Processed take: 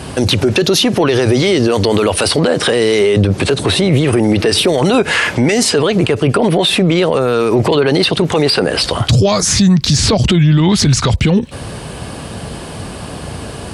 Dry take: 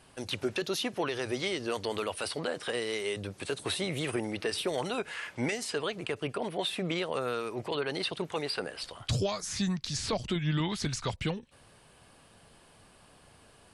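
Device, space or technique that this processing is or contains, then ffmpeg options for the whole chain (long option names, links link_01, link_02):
mastering chain: -filter_complex "[0:a]asettb=1/sr,asplit=3[link_01][link_02][link_03];[link_01]atrim=end=2.994[link_04];[link_02]atrim=start=2.99:end=4.13,asetpts=PTS-STARTPTS,afade=type=in:duration=0.004:curve=qsin,afade=type=out:start_time=1.136:duration=0.004:curve=qsin,highshelf=frequency=5200:gain=-8.5[link_05];[link_03]atrim=start=4.126[link_06];[link_04][link_05]acrossfade=duration=0.004:curve1=hsin:curve2=qsin[link_07];[link_07][link_06]acrossfade=duration=0.004:curve1=qsin:curve2=hsin,highpass=frequency=43:width=0.5412,highpass=frequency=43:width=1.3066,equalizer=frequency=5300:width_type=o:width=1.8:gain=3.5,acompressor=threshold=-36dB:ratio=2,asoftclip=type=tanh:threshold=-22dB,tiltshelf=frequency=650:gain=5.5,alimiter=level_in=33.5dB:limit=-1dB:release=50:level=0:latency=1,volume=-3dB"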